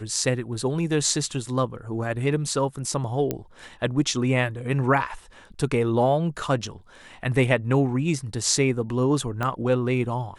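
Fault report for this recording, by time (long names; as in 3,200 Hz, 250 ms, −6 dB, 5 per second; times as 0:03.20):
0:03.31: click −12 dBFS
0:09.43: click −14 dBFS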